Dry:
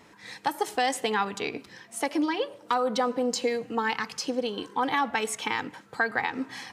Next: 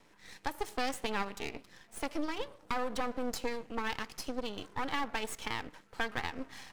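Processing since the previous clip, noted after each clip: half-wave rectifier; trim -5 dB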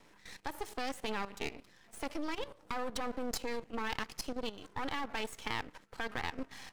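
level held to a coarse grid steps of 13 dB; trim +3.5 dB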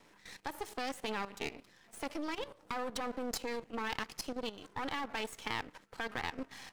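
bass shelf 64 Hz -7.5 dB

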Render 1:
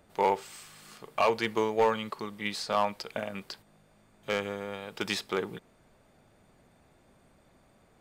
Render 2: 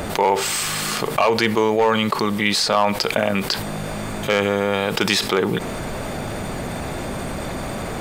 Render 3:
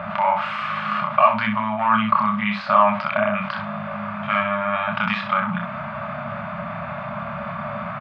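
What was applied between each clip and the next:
level flattener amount 70%; trim +6 dB
FFT band-reject 240–570 Hz; cabinet simulation 180–2300 Hz, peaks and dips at 230 Hz -4 dB, 420 Hz +7 dB, 780 Hz -9 dB, 1.2 kHz +7 dB, 1.9 kHz -6 dB; early reflections 28 ms -4.5 dB, 63 ms -7.5 dB; trim +1 dB

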